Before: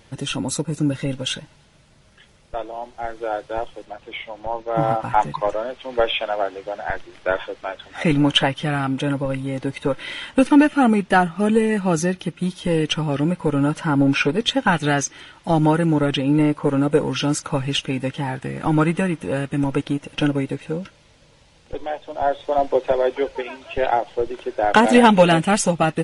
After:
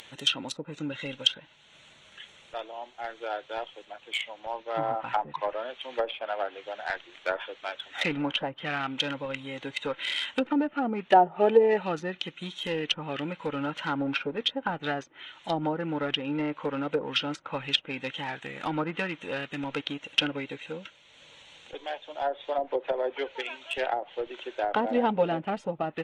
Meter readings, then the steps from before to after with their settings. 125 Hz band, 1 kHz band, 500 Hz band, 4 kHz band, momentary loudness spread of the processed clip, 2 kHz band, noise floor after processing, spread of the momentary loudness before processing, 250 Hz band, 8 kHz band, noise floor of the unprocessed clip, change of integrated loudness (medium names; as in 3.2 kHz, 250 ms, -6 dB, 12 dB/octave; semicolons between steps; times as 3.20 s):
-17.5 dB, -8.0 dB, -8.0 dB, -3.5 dB, 11 LU, -8.0 dB, -57 dBFS, 14 LU, -13.5 dB, -17.0 dB, -53 dBFS, -9.5 dB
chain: local Wiener filter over 9 samples; upward compressor, threshold -38 dBFS; RIAA curve recording; low-pass that closes with the level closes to 690 Hz, closed at -15.5 dBFS; peaking EQ 3.6 kHz +12.5 dB 1.4 oct; time-frequency box 11.13–11.83 s, 350–960 Hz +11 dB; trim -7.5 dB